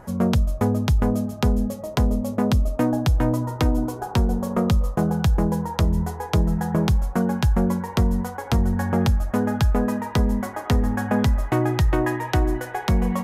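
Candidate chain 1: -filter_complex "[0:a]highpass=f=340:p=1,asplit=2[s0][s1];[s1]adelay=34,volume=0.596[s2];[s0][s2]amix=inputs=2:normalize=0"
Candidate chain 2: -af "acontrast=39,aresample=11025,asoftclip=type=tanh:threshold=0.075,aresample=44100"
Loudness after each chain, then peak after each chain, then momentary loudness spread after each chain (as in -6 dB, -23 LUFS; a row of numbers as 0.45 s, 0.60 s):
-27.0 LUFS, -26.5 LUFS; -8.0 dBFS, -17.5 dBFS; 3 LU, 2 LU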